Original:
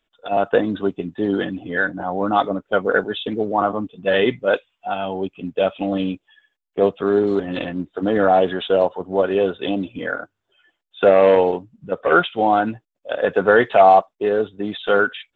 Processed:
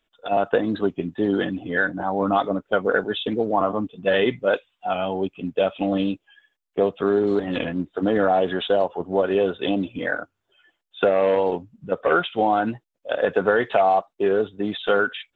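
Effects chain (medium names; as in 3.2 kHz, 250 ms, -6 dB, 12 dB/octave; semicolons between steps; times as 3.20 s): compression, threshold -15 dBFS, peak gain reduction 8 dB; warped record 45 rpm, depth 100 cents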